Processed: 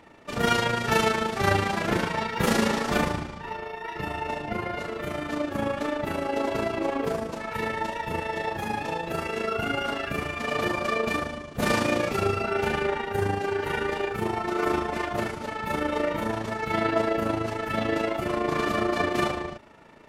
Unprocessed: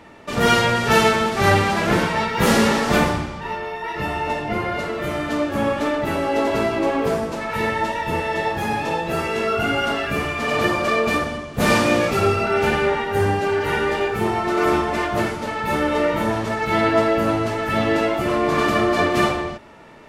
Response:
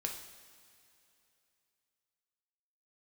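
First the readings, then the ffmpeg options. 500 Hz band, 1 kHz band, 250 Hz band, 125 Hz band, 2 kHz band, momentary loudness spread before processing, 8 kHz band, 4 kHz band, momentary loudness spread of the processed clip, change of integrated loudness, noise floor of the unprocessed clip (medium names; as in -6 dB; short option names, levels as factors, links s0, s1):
-7.0 dB, -7.0 dB, -7.0 dB, -7.0 dB, -7.0 dB, 8 LU, -7.0 dB, -7.0 dB, 8 LU, -7.0 dB, -32 dBFS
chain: -af "tremolo=f=27:d=0.571,volume=0.596"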